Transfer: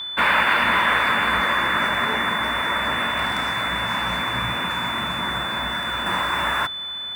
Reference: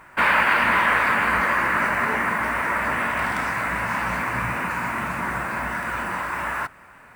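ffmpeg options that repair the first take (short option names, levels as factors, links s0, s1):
-af "bandreject=f=3500:w=30,asetnsamples=n=441:p=0,asendcmd='6.06 volume volume -4dB',volume=1"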